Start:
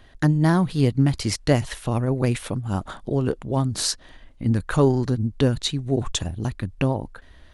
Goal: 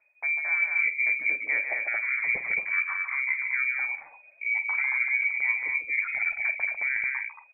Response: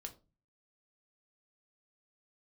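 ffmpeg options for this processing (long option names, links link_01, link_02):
-filter_complex "[0:a]afftdn=noise_reduction=19:noise_floor=-38,lowshelf=frequency=120:width_type=q:width=3:gain=-11,areverse,acompressor=threshold=-24dB:ratio=20,areverse,asplit=2[link_01][link_02];[link_02]adelay=48,volume=-13.5dB[link_03];[link_01][link_03]amix=inputs=2:normalize=0,aecho=1:1:148.7|224.5:0.447|0.631,lowpass=frequency=2100:width_type=q:width=0.5098,lowpass=frequency=2100:width_type=q:width=0.6013,lowpass=frequency=2100:width_type=q:width=0.9,lowpass=frequency=2100:width_type=q:width=2.563,afreqshift=-2500"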